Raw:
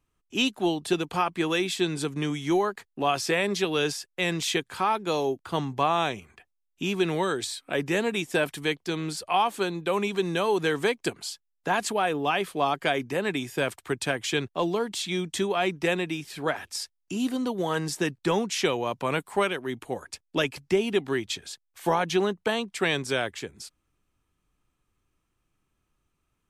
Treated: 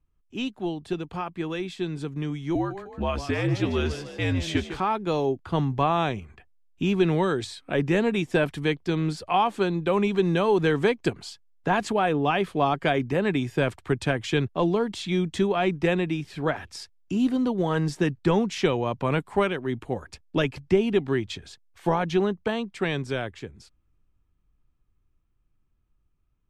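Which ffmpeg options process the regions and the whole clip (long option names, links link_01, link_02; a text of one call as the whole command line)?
ffmpeg -i in.wav -filter_complex "[0:a]asettb=1/sr,asplit=3[link_01][link_02][link_03];[link_01]atrim=end=2.554[link_04];[link_02]atrim=start=2.55:end=4.8,asetpts=PTS-STARTPTS,afade=type=in:duration=0.004:curve=qsin,afade=type=out:start_time=2.246:duration=0.004:curve=qsin,asplit=7[link_05][link_06][link_07][link_08][link_09][link_10][link_11];[link_06]adelay=152,afreqshift=59,volume=-11dB[link_12];[link_07]adelay=304,afreqshift=118,volume=-16.5dB[link_13];[link_08]adelay=456,afreqshift=177,volume=-22dB[link_14];[link_09]adelay=608,afreqshift=236,volume=-27.5dB[link_15];[link_10]adelay=760,afreqshift=295,volume=-33.1dB[link_16];[link_11]adelay=912,afreqshift=354,volume=-38.6dB[link_17];[link_05][link_12][link_13][link_14][link_15][link_16][link_17]amix=inputs=7:normalize=0,atrim=end_sample=99225,afreqshift=-67,asplit=2[link_18][link_19];[link_19]adelay=15,volume=-11dB[link_20];[link_18][link_20]amix=inputs=2:normalize=0,atrim=end_sample=99225[link_21];[link_03]atrim=start=4.796[link_22];[link_04][link_21]acrossfade=duration=0.004:curve1=hsin:curve2=qsin[link_23];[link_23][link_22]acrossfade=duration=0.004:curve1=qsin:curve2=hsin,aemphasis=mode=reproduction:type=bsi,dynaudnorm=framelen=390:gausssize=21:maxgain=11.5dB,volume=-7dB" out.wav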